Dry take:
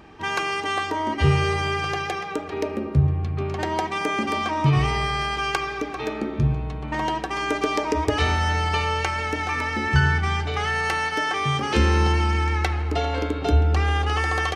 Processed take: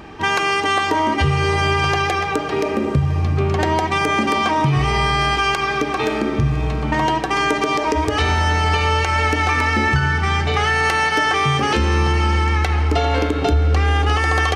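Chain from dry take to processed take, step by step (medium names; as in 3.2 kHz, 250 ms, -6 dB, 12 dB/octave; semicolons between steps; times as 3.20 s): compression, threshold -23 dBFS, peak gain reduction 11 dB; echo that smears into a reverb 579 ms, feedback 49%, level -14 dB; loudness maximiser +15.5 dB; trim -6 dB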